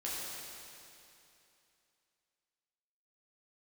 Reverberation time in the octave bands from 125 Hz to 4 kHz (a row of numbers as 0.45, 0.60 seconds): 2.8, 2.8, 2.8, 2.8, 2.8, 2.7 seconds